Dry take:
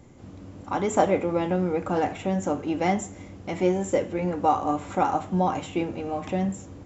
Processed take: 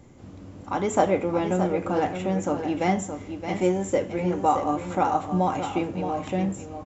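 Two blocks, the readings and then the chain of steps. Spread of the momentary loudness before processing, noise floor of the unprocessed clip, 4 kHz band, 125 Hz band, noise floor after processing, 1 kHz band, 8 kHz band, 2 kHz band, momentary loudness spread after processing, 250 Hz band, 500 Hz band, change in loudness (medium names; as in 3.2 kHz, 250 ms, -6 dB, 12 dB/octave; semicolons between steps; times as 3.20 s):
9 LU, -44 dBFS, +0.5 dB, +0.5 dB, -43 dBFS, +0.5 dB, no reading, +0.5 dB, 8 LU, +0.5 dB, +0.5 dB, +0.5 dB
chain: delay 620 ms -8.5 dB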